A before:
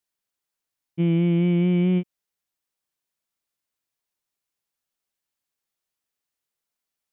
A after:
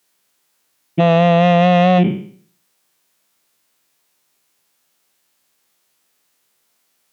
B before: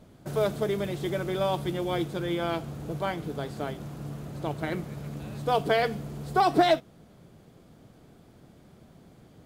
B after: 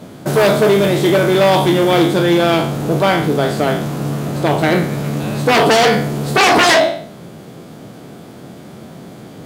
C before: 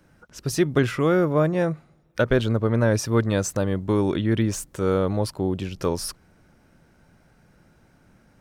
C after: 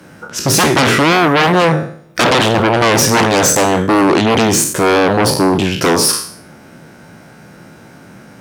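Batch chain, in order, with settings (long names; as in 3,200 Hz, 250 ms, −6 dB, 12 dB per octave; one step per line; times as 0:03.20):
peak hold with a decay on every bin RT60 0.52 s
sine wavefolder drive 16 dB, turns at −5.5 dBFS
high-pass filter 140 Hz 12 dB per octave
level −1.5 dB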